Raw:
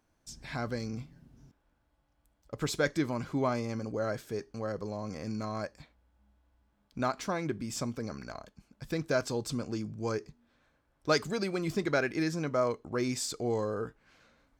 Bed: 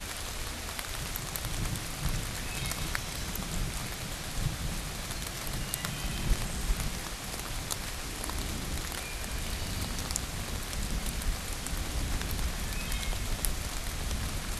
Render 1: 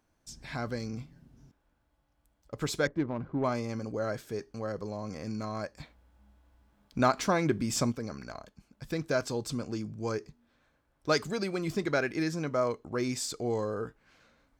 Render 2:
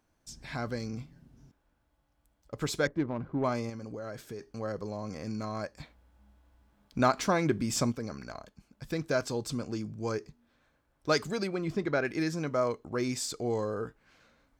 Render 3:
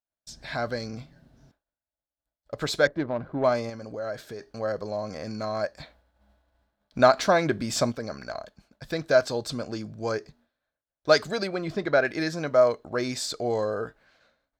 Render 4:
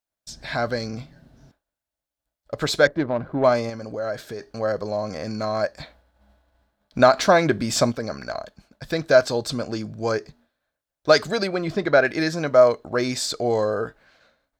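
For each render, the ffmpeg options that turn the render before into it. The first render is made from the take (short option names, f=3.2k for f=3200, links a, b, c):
-filter_complex "[0:a]asettb=1/sr,asplit=3[a][b][c];[a]atrim=end=2.874[d];[b]atrim=start=2.87:end=3.44,asetpts=PTS-STARTPTS,afade=t=in:d=0.004:c=qsin,afade=t=out:st=0.566:d=0.004:c=qsin,adynamicsmooth=sensitivity=1.5:basefreq=820[e];[c]atrim=start=3.436[f];[d][e]acrossfade=d=0.004:c1=hsin:c2=qsin[g];[g][f]acrossfade=d=0.004:c1=qsin:c2=hsin,asettb=1/sr,asplit=3[h][i][j];[h]atrim=end=5.774[k];[i]atrim=start=5.77:end=7.92,asetpts=PTS-STARTPTS,afade=t=in:d=0.004:c=qsin,afade=t=out:st=2.146:d=0.004:c=qsin,acontrast=56[l];[j]atrim=start=7.916[m];[k][l]acrossfade=d=0.004:c1=hsin:c2=qsin[n];[n][m]acrossfade=d=0.004:c1=qsin:c2=hsin"
-filter_complex "[0:a]asettb=1/sr,asplit=3[a][b][c];[a]atrim=end=3.694[d];[b]atrim=start=3.69:end=4.46,asetpts=PTS-STARTPTS,afade=t=in:d=0.004:c=qsin,afade=t=out:st=0.766:d=0.004:c=qsin,acompressor=threshold=-36dB:ratio=6:attack=3.2:release=140:knee=1:detection=peak[e];[c]atrim=start=4.456[f];[d][e]acrossfade=d=0.004:c1=hsin:c2=qsin[g];[g][f]acrossfade=d=0.004:c1=qsin:c2=hsin,asettb=1/sr,asplit=3[h][i][j];[h]atrim=end=11.474[k];[i]atrim=start=11.47:end=12.05,asetpts=PTS-STARTPTS,afade=t=in:d=0.004:c=qsin,afade=t=out:st=0.576:d=0.004:c=qsin,lowpass=f=2.3k:p=1[l];[j]atrim=start=12.046[m];[k][l]acrossfade=d=0.004:c1=hsin:c2=qsin[n];[n][m]acrossfade=d=0.004:c1=qsin:c2=hsin"
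-af "agate=range=-33dB:threshold=-56dB:ratio=3:detection=peak,equalizer=f=630:t=o:w=0.67:g=11,equalizer=f=1.6k:t=o:w=0.67:g=7,equalizer=f=4k:t=o:w=0.67:g=9"
-af "volume=5dB,alimiter=limit=-3dB:level=0:latency=1"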